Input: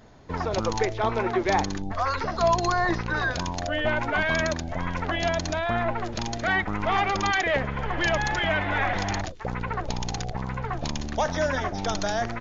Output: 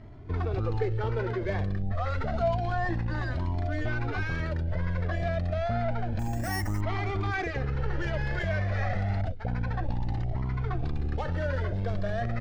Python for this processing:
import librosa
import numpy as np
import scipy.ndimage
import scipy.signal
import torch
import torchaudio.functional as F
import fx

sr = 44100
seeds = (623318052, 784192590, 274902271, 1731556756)

p1 = scipy.ndimage.median_filter(x, 15, mode='constant')
p2 = fx.graphic_eq_15(p1, sr, hz=(100, 1000, 6300), db=(8, -9, -5))
p3 = fx.over_compress(p2, sr, threshold_db=-33.0, ratio=-1.0)
p4 = p2 + (p3 * librosa.db_to_amplitude(-0.5))
p5 = fx.air_absorb(p4, sr, metres=140.0)
p6 = fx.resample_bad(p5, sr, factor=6, down='filtered', up='hold', at=(6.19, 6.81))
p7 = fx.comb_cascade(p6, sr, direction='rising', hz=0.29)
y = p7 * librosa.db_to_amplitude(-1.5)